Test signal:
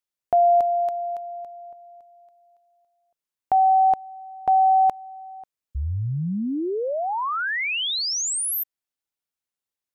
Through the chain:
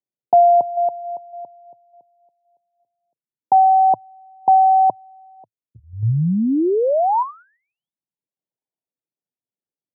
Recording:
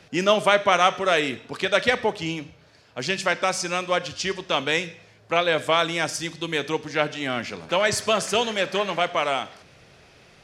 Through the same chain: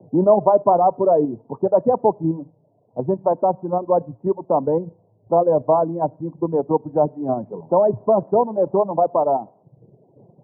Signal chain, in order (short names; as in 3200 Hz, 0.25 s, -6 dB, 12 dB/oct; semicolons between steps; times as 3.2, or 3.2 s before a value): low-pass opened by the level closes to 520 Hz, open at -19 dBFS; Chebyshev band-pass 110–970 Hz, order 5; reverb removal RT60 0.9 s; in parallel at +2 dB: level quantiser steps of 15 dB; on the sum: mismatched tape noise reduction decoder only; gain +4.5 dB